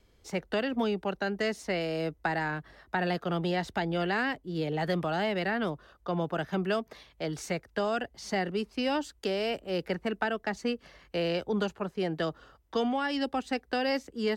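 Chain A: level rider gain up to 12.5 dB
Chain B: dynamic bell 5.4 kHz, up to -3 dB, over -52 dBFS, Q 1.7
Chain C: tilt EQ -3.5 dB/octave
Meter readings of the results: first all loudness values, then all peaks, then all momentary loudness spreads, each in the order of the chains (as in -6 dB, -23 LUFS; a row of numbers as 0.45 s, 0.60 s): -19.5 LUFS, -32.0 LUFS, -27.0 LUFS; -4.0 dBFS, -15.5 dBFS, -12.5 dBFS; 6 LU, 6 LU, 7 LU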